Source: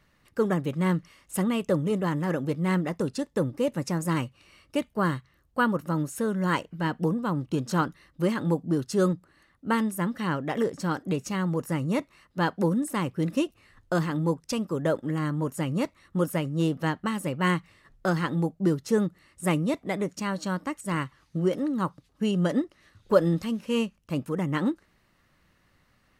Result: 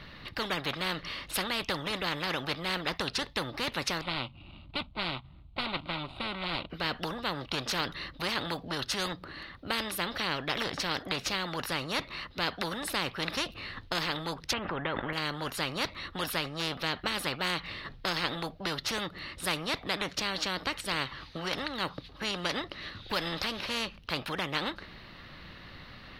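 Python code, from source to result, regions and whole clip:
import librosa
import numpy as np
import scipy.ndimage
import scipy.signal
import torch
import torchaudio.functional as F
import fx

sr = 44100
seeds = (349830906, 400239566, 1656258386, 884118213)

y = fx.chain(x, sr, fx.median_filter(points=41),
    fx.lowpass(hz=9100.0, slope=24),
    fx.fixed_phaser(hz=1700.0, stages=6), at=(4.01, 6.7))
y = fx.chain(y, sr, fx.lowpass(hz=2100.0, slope=24),
    fx.env_flatten(amount_pct=70), at=(14.53, 15.13))
y = fx.high_shelf_res(y, sr, hz=5500.0, db=-12.0, q=3.0)
y = fx.spectral_comp(y, sr, ratio=4.0)
y = F.gain(torch.from_numpy(y), -6.5).numpy()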